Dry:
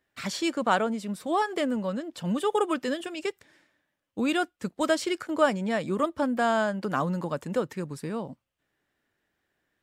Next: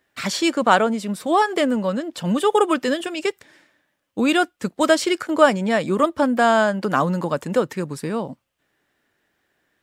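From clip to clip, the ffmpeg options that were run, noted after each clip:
ffmpeg -i in.wav -af "lowshelf=frequency=130:gain=-6,volume=8.5dB" out.wav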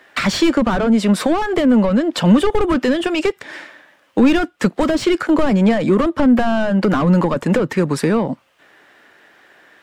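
ffmpeg -i in.wav -filter_complex "[0:a]asplit=2[link_01][link_02];[link_02]highpass=frequency=720:poles=1,volume=25dB,asoftclip=type=tanh:threshold=-1dB[link_03];[link_01][link_03]amix=inputs=2:normalize=0,lowpass=frequency=2100:poles=1,volume=-6dB,acrossover=split=280[link_04][link_05];[link_05]acompressor=threshold=-24dB:ratio=10[link_06];[link_04][link_06]amix=inputs=2:normalize=0,volume=5dB" out.wav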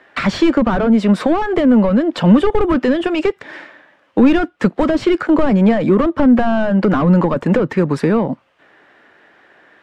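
ffmpeg -i in.wav -af "aemphasis=mode=reproduction:type=75fm,volume=1dB" out.wav

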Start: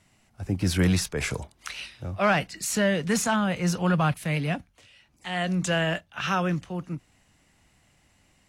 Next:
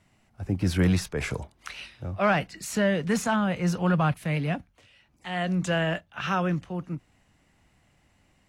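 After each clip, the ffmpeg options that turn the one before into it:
ffmpeg -i in.wav -af "equalizer=frequency=9100:width_type=o:width=2.7:gain=-7" out.wav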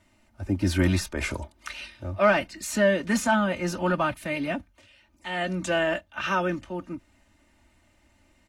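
ffmpeg -i in.wav -af "aecho=1:1:3.3:0.83" out.wav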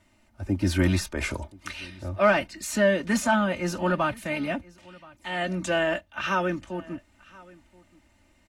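ffmpeg -i in.wav -af "aecho=1:1:1027:0.0668" out.wav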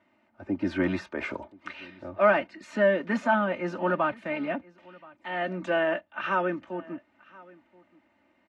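ffmpeg -i in.wav -af "highpass=240,lowpass=2100" out.wav

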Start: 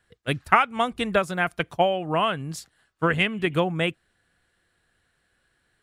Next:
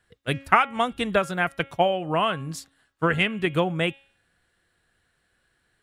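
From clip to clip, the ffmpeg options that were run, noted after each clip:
ffmpeg -i in.wav -af "bandreject=frequency=274.6:width_type=h:width=4,bandreject=frequency=549.2:width_type=h:width=4,bandreject=frequency=823.8:width_type=h:width=4,bandreject=frequency=1098.4:width_type=h:width=4,bandreject=frequency=1373:width_type=h:width=4,bandreject=frequency=1647.6:width_type=h:width=4,bandreject=frequency=1922.2:width_type=h:width=4,bandreject=frequency=2196.8:width_type=h:width=4,bandreject=frequency=2471.4:width_type=h:width=4,bandreject=frequency=2746:width_type=h:width=4,bandreject=frequency=3020.6:width_type=h:width=4,bandreject=frequency=3295.2:width_type=h:width=4,bandreject=frequency=3569.8:width_type=h:width=4,bandreject=frequency=3844.4:width_type=h:width=4" out.wav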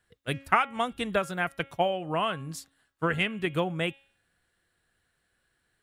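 ffmpeg -i in.wav -af "highshelf=frequency=11000:gain=7,volume=-5dB" out.wav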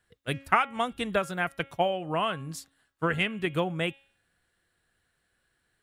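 ffmpeg -i in.wav -af anull out.wav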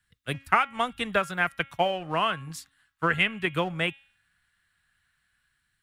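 ffmpeg -i in.wav -filter_complex "[0:a]acrossover=split=240|1000|3100[link_01][link_02][link_03][link_04];[link_02]aeval=exprs='sgn(val(0))*max(abs(val(0))-0.00501,0)':channel_layout=same[link_05];[link_03]dynaudnorm=framelen=270:gausssize=5:maxgain=6dB[link_06];[link_01][link_05][link_06][link_04]amix=inputs=4:normalize=0" out.wav

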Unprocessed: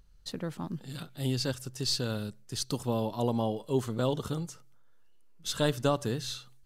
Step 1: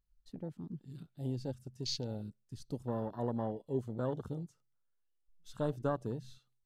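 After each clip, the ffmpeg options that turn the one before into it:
ffmpeg -i in.wav -af "afwtdn=0.0224,volume=-6.5dB" out.wav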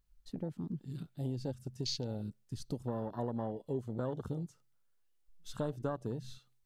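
ffmpeg -i in.wav -af "acompressor=threshold=-41dB:ratio=3,volume=6dB" out.wav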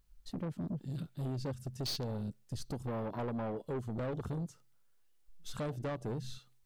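ffmpeg -i in.wav -af "asoftclip=type=tanh:threshold=-38.5dB,volume=5.5dB" out.wav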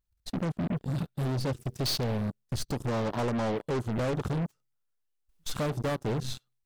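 ffmpeg -i in.wav -af "aeval=exprs='0.0237*(cos(1*acos(clip(val(0)/0.0237,-1,1)))-cos(1*PI/2))+0.00376*(cos(7*acos(clip(val(0)/0.0237,-1,1)))-cos(7*PI/2))':channel_layout=same,volume=8dB" out.wav

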